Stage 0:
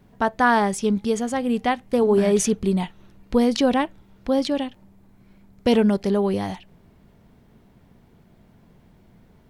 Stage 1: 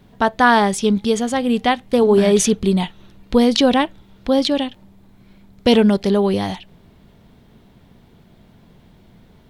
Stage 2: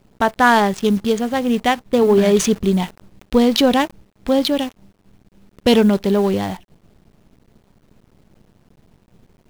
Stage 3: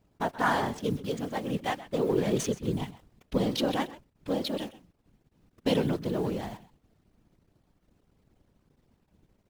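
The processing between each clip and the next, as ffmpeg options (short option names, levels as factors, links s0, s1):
-af "equalizer=f=3600:t=o:w=0.69:g=7,volume=1.68"
-af "adynamicsmooth=sensitivity=3.5:basefreq=890,acrusher=bits=7:dc=4:mix=0:aa=0.000001"
-af "aecho=1:1:129:0.15,afftfilt=real='hypot(re,im)*cos(2*PI*random(0))':imag='hypot(re,im)*sin(2*PI*random(1))':win_size=512:overlap=0.75,volume=0.422"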